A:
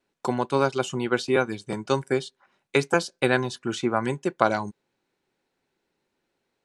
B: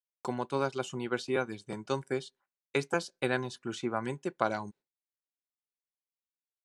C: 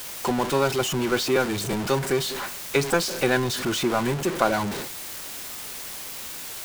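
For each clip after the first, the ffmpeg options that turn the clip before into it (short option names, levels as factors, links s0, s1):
-af "agate=range=0.0224:threshold=0.00708:ratio=3:detection=peak,volume=0.376"
-af "aeval=exprs='val(0)+0.5*0.0316*sgn(val(0))':c=same,volume=2"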